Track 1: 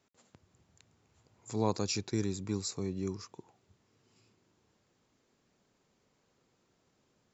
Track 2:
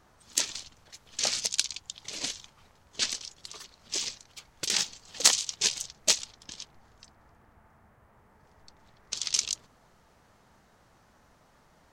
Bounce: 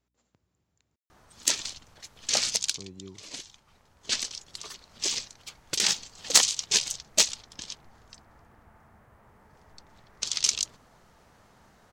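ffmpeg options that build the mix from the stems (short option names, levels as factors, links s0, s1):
-filter_complex "[0:a]aeval=exprs='val(0)+0.000224*(sin(2*PI*60*n/s)+sin(2*PI*2*60*n/s)/2+sin(2*PI*3*60*n/s)/3+sin(2*PI*4*60*n/s)/4+sin(2*PI*5*60*n/s)/5)':c=same,volume=0.355,asplit=3[s0][s1][s2];[s0]atrim=end=0.96,asetpts=PTS-STARTPTS,afade=t=out:st=0.956:d=0.004:c=hsin[s3];[s1]atrim=start=0.96:end=2.68,asetpts=PTS-STARTPTS,volume=0[s4];[s2]atrim=start=2.68,asetpts=PTS-STARTPTS,afade=t=in:d=0.004:c=hsin[s5];[s3][s4][s5]concat=n=3:v=0:a=1,asplit=2[s6][s7];[1:a]acontrast=39,adelay=1100,volume=0.75[s8];[s7]apad=whole_len=574376[s9];[s8][s9]sidechaincompress=threshold=0.002:ratio=4:attack=47:release=1320[s10];[s6][s10]amix=inputs=2:normalize=0"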